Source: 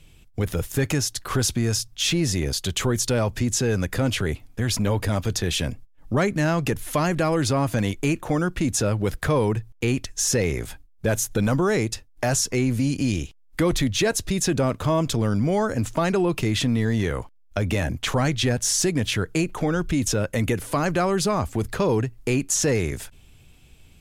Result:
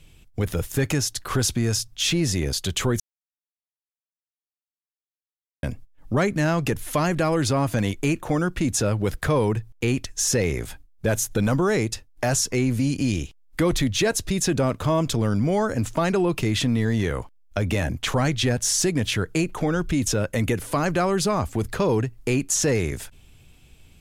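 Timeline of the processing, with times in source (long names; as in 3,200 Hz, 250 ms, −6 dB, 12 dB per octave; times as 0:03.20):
0:03.00–0:05.63: silence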